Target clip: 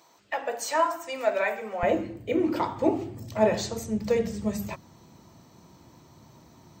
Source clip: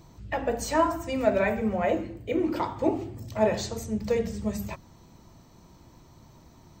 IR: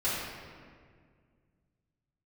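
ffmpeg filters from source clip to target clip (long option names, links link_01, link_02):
-af "asetnsamples=nb_out_samples=441:pad=0,asendcmd='1.83 highpass f 100',highpass=620,volume=1.5dB"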